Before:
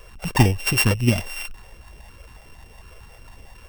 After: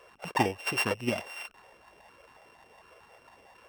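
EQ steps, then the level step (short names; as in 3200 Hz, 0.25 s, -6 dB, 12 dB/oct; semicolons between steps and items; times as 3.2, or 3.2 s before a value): HPF 600 Hz 12 dB/oct; tilt -3.5 dB/oct; -2.5 dB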